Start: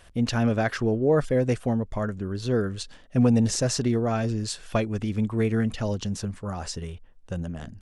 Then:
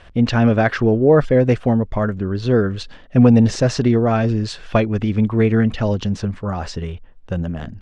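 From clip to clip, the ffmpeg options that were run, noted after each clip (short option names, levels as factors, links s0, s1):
-af "lowpass=3600,volume=2.66"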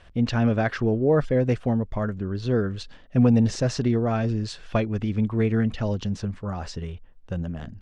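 -af "bass=f=250:g=2,treble=f=4000:g=3,volume=0.398"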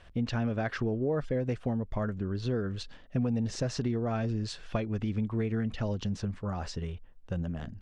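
-af "acompressor=threshold=0.0631:ratio=4,volume=0.708"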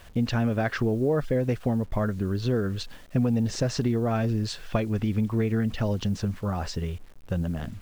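-af "acrusher=bits=9:mix=0:aa=0.000001,volume=1.88"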